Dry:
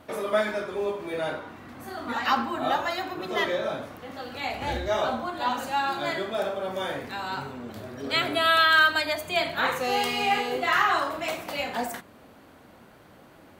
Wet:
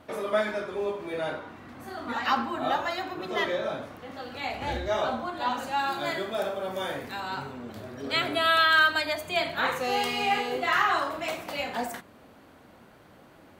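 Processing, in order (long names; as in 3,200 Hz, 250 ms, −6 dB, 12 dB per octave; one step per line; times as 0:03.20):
high-shelf EQ 9,400 Hz −6 dB, from 0:05.79 +5.5 dB, from 0:07.20 −3 dB
level −1.5 dB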